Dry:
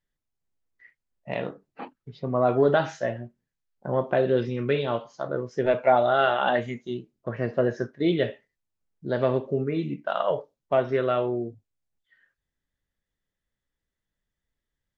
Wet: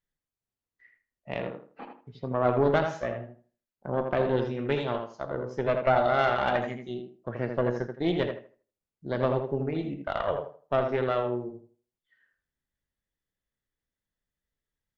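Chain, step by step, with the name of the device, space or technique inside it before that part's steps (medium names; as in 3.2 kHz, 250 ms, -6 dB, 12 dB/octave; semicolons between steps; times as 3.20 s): rockabilly slapback (valve stage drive 13 dB, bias 0.8; tape echo 80 ms, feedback 29%, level -4 dB, low-pass 2 kHz)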